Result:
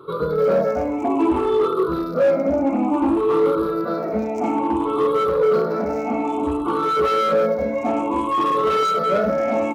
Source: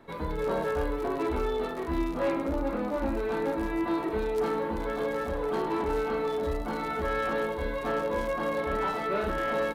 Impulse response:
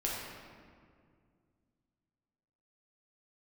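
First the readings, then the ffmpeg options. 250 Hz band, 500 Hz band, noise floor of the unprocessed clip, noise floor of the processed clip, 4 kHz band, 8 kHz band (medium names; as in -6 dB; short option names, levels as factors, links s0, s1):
+10.5 dB, +10.5 dB, -34 dBFS, -26 dBFS, +8.0 dB, no reading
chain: -af "afftfilt=real='re*pow(10,19/40*sin(2*PI*(0.63*log(max(b,1)*sr/1024/100)/log(2)-(0.58)*(pts-256)/sr)))':imag='im*pow(10,19/40*sin(2*PI*(0.63*log(max(b,1)*sr/1024/100)/log(2)-(0.58)*(pts-256)/sr)))':win_size=1024:overlap=0.75,superequalizer=10b=2.24:11b=0.282,volume=10.6,asoftclip=hard,volume=0.0944,highpass=f=65:w=0.5412,highpass=f=65:w=1.3066,equalizer=f=380:w=0.4:g=11,volume=0.794"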